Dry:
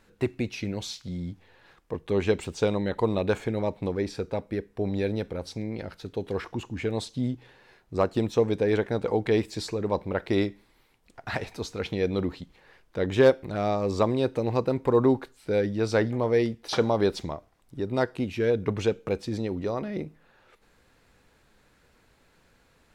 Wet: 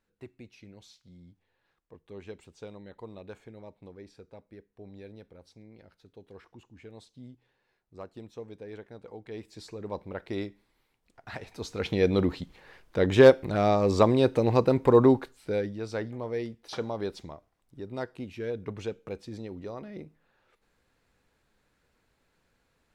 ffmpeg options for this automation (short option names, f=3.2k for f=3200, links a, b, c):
-af "volume=3dB,afade=t=in:st=9.27:d=0.65:silence=0.316228,afade=t=in:st=11.45:d=0.59:silence=0.251189,afade=t=out:st=14.93:d=0.87:silence=0.237137"